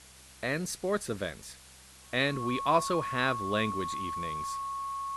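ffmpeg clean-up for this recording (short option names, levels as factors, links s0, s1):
-af "bandreject=f=64.9:t=h:w=4,bandreject=f=129.8:t=h:w=4,bandreject=f=194.7:t=h:w=4,bandreject=f=1100:w=30,afwtdn=0.0025"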